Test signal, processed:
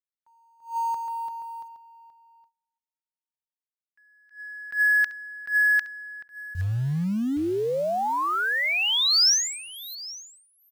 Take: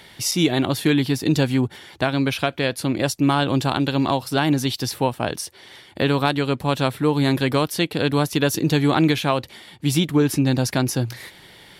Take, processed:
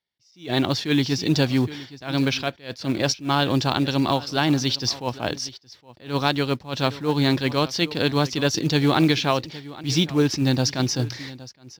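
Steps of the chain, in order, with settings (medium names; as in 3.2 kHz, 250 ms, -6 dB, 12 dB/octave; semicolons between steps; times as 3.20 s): gate -40 dBFS, range -43 dB; resonant high shelf 7.5 kHz -13 dB, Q 3; delay 817 ms -18.5 dB; in parallel at -4.5 dB: short-mantissa float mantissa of 2-bit; on the sum: attacks held to a fixed rise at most 190 dB/s; trim -5 dB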